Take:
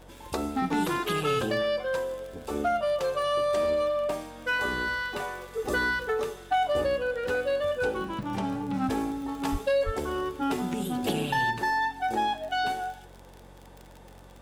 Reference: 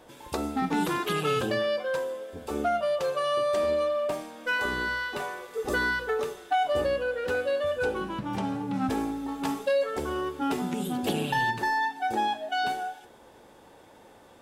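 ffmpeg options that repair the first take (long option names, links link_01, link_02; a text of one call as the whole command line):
ffmpeg -i in.wav -filter_complex "[0:a]adeclick=threshold=4,bandreject=frequency=45.9:width_type=h:width=4,bandreject=frequency=91.8:width_type=h:width=4,bandreject=frequency=137.7:width_type=h:width=4,bandreject=frequency=183.6:width_type=h:width=4,bandreject=frequency=229.5:width_type=h:width=4,asplit=3[link_01][link_02][link_03];[link_01]afade=type=out:start_time=9.51:duration=0.02[link_04];[link_02]highpass=frequency=140:width=0.5412,highpass=frequency=140:width=1.3066,afade=type=in:start_time=9.51:duration=0.02,afade=type=out:start_time=9.63:duration=0.02[link_05];[link_03]afade=type=in:start_time=9.63:duration=0.02[link_06];[link_04][link_05][link_06]amix=inputs=3:normalize=0,asplit=3[link_07][link_08][link_09];[link_07]afade=type=out:start_time=9.85:duration=0.02[link_10];[link_08]highpass=frequency=140:width=0.5412,highpass=frequency=140:width=1.3066,afade=type=in:start_time=9.85:duration=0.02,afade=type=out:start_time=9.97:duration=0.02[link_11];[link_09]afade=type=in:start_time=9.97:duration=0.02[link_12];[link_10][link_11][link_12]amix=inputs=3:normalize=0" out.wav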